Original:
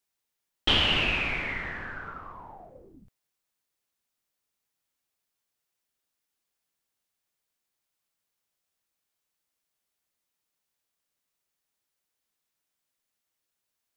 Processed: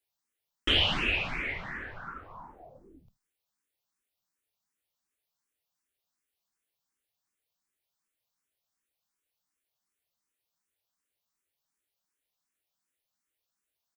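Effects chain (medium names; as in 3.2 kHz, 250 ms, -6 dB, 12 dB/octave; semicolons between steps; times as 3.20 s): delay 79 ms -23 dB; barber-pole phaser +2.7 Hz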